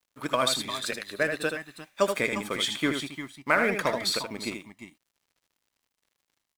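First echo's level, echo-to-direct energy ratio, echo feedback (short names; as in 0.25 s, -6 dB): -6.5 dB, -5.0 dB, no steady repeat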